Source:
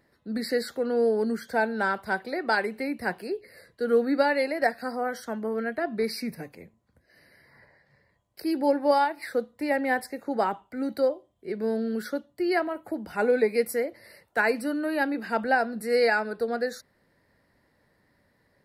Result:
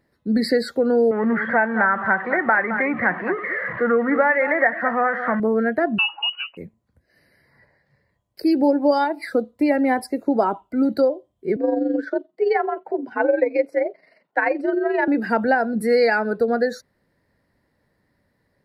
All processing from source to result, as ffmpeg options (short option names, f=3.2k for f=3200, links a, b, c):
-filter_complex "[0:a]asettb=1/sr,asplit=3[a][b][c];[a]atrim=end=1.114[d];[b]atrim=start=1.11:end=5.4,asetpts=PTS-STARTPTS,afade=t=in:d=0.004:c=qsin,afade=t=out:st=4.286:d=0.004:c=qsin,aeval=exprs='val(0)+0.5*0.0211*sgn(val(0))':c=same,highpass=180,equalizer=f=270:t=q:w=4:g=-7,equalizer=f=420:t=q:w=4:g=-8,equalizer=f=1.2k:t=q:w=4:g=8,equalizer=f=1.9k:t=q:w=4:g=9,lowpass=f=2.4k:w=0.5412,lowpass=f=2.4k:w=1.3066,aecho=1:1:214:0.224,atrim=end_sample=189189[e];[c]atrim=start=5.396[f];[d][e]acrossfade=d=0.004:c1=hsin:c2=qsin[g];[g][f]acrossfade=d=0.004:c1=qsin:c2=hsin,asettb=1/sr,asplit=3[h][i][j];[h]atrim=end=5.984[k];[i]atrim=start=5.98:end=6.57,asetpts=PTS-STARTPTS,afade=t=in:d=0.004:c=qsin,afade=t=out:st=0.586:d=0.004:c=qsin,highpass=110,lowpass=f=2.6k:t=q:w=0.5098,lowpass=f=2.6k:t=q:w=0.6013,lowpass=f=2.6k:t=q:w=0.9,lowpass=f=2.6k:t=q:w=2.563,afreqshift=-3100[l];[j]atrim=start=6.566[m];[k][l]acrossfade=d=0.004:c1=hsin:c2=qsin[n];[n][m]acrossfade=d=0.004:c1=qsin:c2=hsin,asettb=1/sr,asplit=3[o][p][q];[o]atrim=end=8.624[r];[p]atrim=start=8.62:end=10.85,asetpts=PTS-STARTPTS,afade=t=in:d=0.004:c=qsin,afade=t=out:st=2.226:d=0.004:c=qsin,equalizer=f=1.8k:w=3.3:g=-5.5,aecho=1:1:3:0.3,atrim=end_sample=98343[s];[q]atrim=start=10.846[t];[r][s]acrossfade=d=0.004:c1=hsin:c2=qsin[u];[u][t]acrossfade=d=0.004:c1=qsin:c2=hsin,asettb=1/sr,asplit=3[v][w][x];[v]atrim=end=11.564[y];[w]atrim=start=11.56:end=15.08,asetpts=PTS-STARTPTS,afade=t=in:d=0.004:c=qsin,afade=t=out:st=3.516:d=0.004:c=qsin,afreqshift=63,tremolo=f=23:d=0.571,highpass=230,lowpass=3.4k[z];[x]atrim=start=15.076[aa];[y][z]acrossfade=d=0.004:c1=hsin:c2=qsin[ab];[ab][aa]acrossfade=d=0.004:c1=qsin:c2=hsin,acompressor=threshold=-27dB:ratio=2.5,afftdn=nr=12:nf=-41,lowshelf=f=380:g=4.5,volume=9dB"